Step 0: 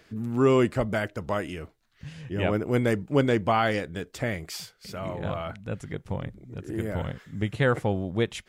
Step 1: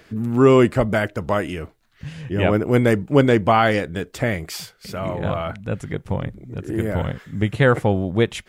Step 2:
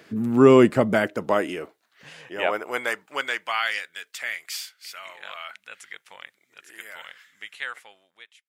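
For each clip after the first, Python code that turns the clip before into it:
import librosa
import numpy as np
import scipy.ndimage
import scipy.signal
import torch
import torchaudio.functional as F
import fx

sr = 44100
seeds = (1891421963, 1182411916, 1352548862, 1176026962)

y1 = fx.peak_eq(x, sr, hz=5400.0, db=-3.0, octaves=1.5)
y1 = y1 * librosa.db_to_amplitude(7.5)
y2 = fx.fade_out_tail(y1, sr, length_s=1.79)
y2 = fx.filter_sweep_highpass(y2, sr, from_hz=180.0, to_hz=2000.0, start_s=0.83, end_s=3.62, q=1.0)
y2 = y2 * librosa.db_to_amplitude(-1.0)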